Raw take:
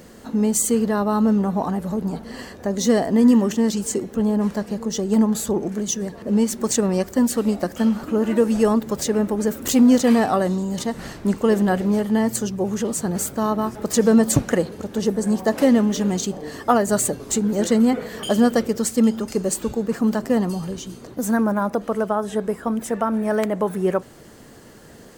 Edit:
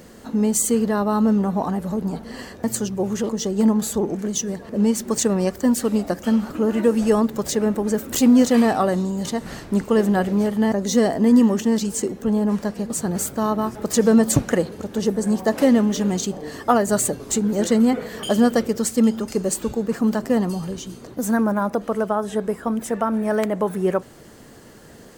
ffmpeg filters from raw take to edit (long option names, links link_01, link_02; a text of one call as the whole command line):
ffmpeg -i in.wav -filter_complex "[0:a]asplit=5[link_01][link_02][link_03][link_04][link_05];[link_01]atrim=end=2.642[link_06];[link_02]atrim=start=12.248:end=12.902[link_07];[link_03]atrim=start=4.818:end=12.252[link_08];[link_04]atrim=start=2.638:end=4.822[link_09];[link_05]atrim=start=12.898[link_10];[link_06][link_07]acrossfade=duration=0.004:curve1=hsin:curve2=hsin[link_11];[link_11][link_08]acrossfade=duration=0.004:curve1=hsin:curve2=hsin[link_12];[link_12][link_09]acrossfade=duration=0.004:curve1=hsin:curve2=hsin[link_13];[link_13][link_10]acrossfade=duration=0.004:curve1=hsin:curve2=hsin" out.wav